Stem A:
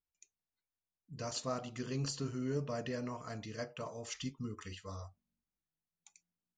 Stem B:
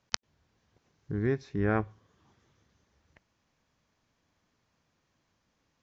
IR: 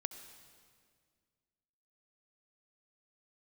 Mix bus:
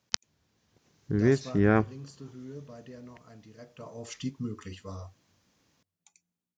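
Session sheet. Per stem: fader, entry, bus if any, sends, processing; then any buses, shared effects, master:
0:01.09 −8 dB → 0:01.84 −19 dB → 0:03.59 −19 dB → 0:04.05 −6 dB, 0.00 s, send −23 dB, no processing
−6.5 dB, 0.00 s, no send, high-shelf EQ 2,500 Hz +11.5 dB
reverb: on, RT60 1.9 s, pre-delay 62 ms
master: automatic gain control gain up to 6 dB; high-pass filter 200 Hz 6 dB per octave; low-shelf EQ 440 Hz +12 dB

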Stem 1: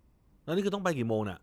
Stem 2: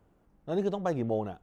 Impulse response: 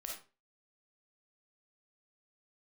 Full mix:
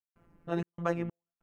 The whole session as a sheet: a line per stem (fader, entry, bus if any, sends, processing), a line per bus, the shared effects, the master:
+1.0 dB, 0.00 s, no send, spectral tilt +4 dB per octave; upward compression, threshold −35 dBFS; Gaussian smoothing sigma 14 samples; automatic ducking −8 dB, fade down 0.20 s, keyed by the second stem
+0.5 dB, 3.6 ms, no send, flat-topped bell 1,700 Hz +8.5 dB; notch filter 3,500 Hz, Q 18; phases set to zero 170 Hz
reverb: not used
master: gate pattern ".xxx.xx." 96 BPM −60 dB; notch filter 5,900 Hz, Q 25

